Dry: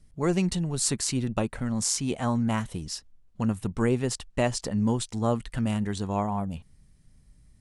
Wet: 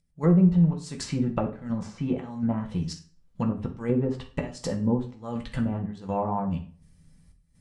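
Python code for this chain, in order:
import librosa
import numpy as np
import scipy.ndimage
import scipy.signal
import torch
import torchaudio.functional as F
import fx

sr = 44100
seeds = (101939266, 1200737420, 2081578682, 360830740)

y = fx.volume_shaper(x, sr, bpm=82, per_beat=1, depth_db=-19, release_ms=231.0, shape='slow start')
y = fx.env_lowpass_down(y, sr, base_hz=660.0, full_db=-21.5)
y = fx.rev_fdn(y, sr, rt60_s=0.44, lf_ratio=1.05, hf_ratio=0.8, size_ms=35.0, drr_db=1.0)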